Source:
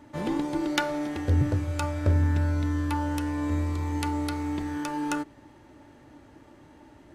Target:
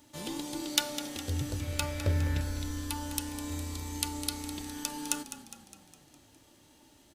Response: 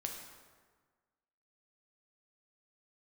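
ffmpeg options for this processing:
-filter_complex "[0:a]asettb=1/sr,asplit=3[s0][s1][s2];[s0]atrim=end=1.604[s3];[s1]atrim=start=1.6:end=2.41,asetpts=PTS-STARTPTS,afade=t=in:d=0.004:c=qsin,afade=t=out:st=0.806:d=0.004:c=qsin,equalizer=f=125:t=o:w=1:g=9,equalizer=f=500:t=o:w=1:g=6,equalizer=f=2000:t=o:w=1:g=8,equalizer=f=8000:t=o:w=1:g=-5[s4];[s2]atrim=start=2.406[s5];[s3][s4]acrossfade=d=0.004:c1=hsin:c2=qsin[s6];[s6][s5]acrossfade=d=0.004:c1=qsin:c2=hsin,crystalizer=i=3.5:c=0,highshelf=f=2500:t=q:w=1.5:g=6,asplit=2[s7][s8];[s8]asplit=6[s9][s10][s11][s12][s13][s14];[s9]adelay=205,afreqshift=-31,volume=0.251[s15];[s10]adelay=410,afreqshift=-62,volume=0.138[s16];[s11]adelay=615,afreqshift=-93,volume=0.0759[s17];[s12]adelay=820,afreqshift=-124,volume=0.0417[s18];[s13]adelay=1025,afreqshift=-155,volume=0.0229[s19];[s14]adelay=1230,afreqshift=-186,volume=0.0126[s20];[s15][s16][s17][s18][s19][s20]amix=inputs=6:normalize=0[s21];[s7][s21]amix=inputs=2:normalize=0,volume=0.299"

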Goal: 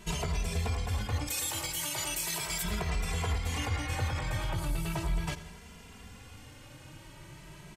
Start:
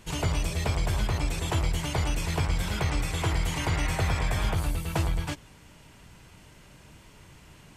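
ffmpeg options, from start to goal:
-filter_complex "[0:a]asplit=3[s0][s1][s2];[s0]afade=t=out:st=1.26:d=0.02[s3];[s1]aemphasis=mode=production:type=riaa,afade=t=in:st=1.26:d=0.02,afade=t=out:st=2.62:d=0.02[s4];[s2]afade=t=in:st=2.62:d=0.02[s5];[s3][s4][s5]amix=inputs=3:normalize=0,aecho=1:1:84|168|252|336|420:0.141|0.0763|0.0412|0.0222|0.012,alimiter=level_in=1.19:limit=0.0631:level=0:latency=1:release=134,volume=0.841,asplit=2[s6][s7];[s7]adelay=2.6,afreqshift=0.38[s8];[s6][s8]amix=inputs=2:normalize=1,volume=1.78"

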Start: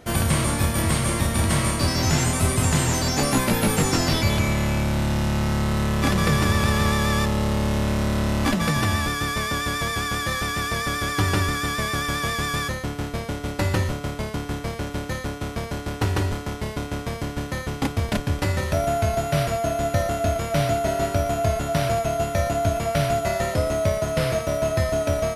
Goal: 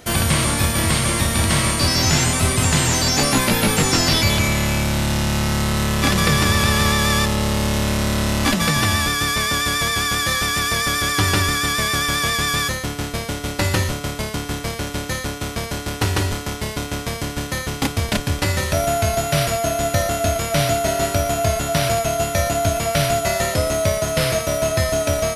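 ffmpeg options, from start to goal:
-filter_complex "[0:a]highshelf=f=2300:g=9.5,acrossover=split=5500[s0][s1];[s1]alimiter=limit=0.0891:level=0:latency=1[s2];[s0][s2]amix=inputs=2:normalize=0,volume=1.26"

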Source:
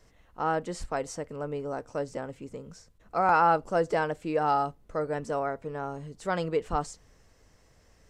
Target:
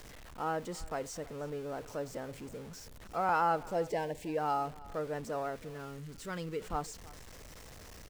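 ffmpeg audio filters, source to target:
-filter_complex "[0:a]aeval=exprs='val(0)+0.5*0.0126*sgn(val(0))':c=same,asettb=1/sr,asplit=3[s0][s1][s2];[s0]atrim=end=3.664[s3];[s1]atrim=start=3.66:end=4.38,asetpts=PTS-STARTPTS,afade=t=in:d=0.004:c=qsin,afade=t=out:st=0.716:d=0.004:c=qsin,asuperstop=centerf=1300:order=4:qfactor=1.9[s4];[s2]atrim=start=4.376[s5];[s3][s4]acrossfade=d=0.004:c1=hsin:c2=qsin[s6];[s6][s5]acrossfade=d=0.004:c1=qsin:c2=hsin,asettb=1/sr,asplit=3[s7][s8][s9];[s7]atrim=end=5.564[s10];[s8]atrim=start=5.56:end=6.62,asetpts=PTS-STARTPTS,afade=t=in:d=0.004:c=qsin,afade=t=out:st=1.056:d=0.004:c=qsin,equalizer=f=730:w=1.5:g=-12[s11];[s9]atrim=start=6.616[s12];[s10][s11]acrossfade=d=0.004:c1=hsin:c2=qsin[s13];[s13][s12]acrossfade=d=0.004:c1=qsin:c2=hsin,aecho=1:1:320:0.0891,volume=0.422"

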